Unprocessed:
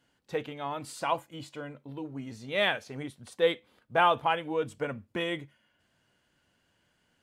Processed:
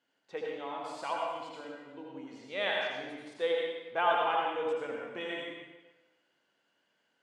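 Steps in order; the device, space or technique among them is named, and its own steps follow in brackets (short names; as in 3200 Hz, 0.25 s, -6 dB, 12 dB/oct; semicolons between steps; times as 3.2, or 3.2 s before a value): supermarket ceiling speaker (BPF 300–6100 Hz; reverb RT60 1.2 s, pre-delay 72 ms, DRR -2 dB); gain -7 dB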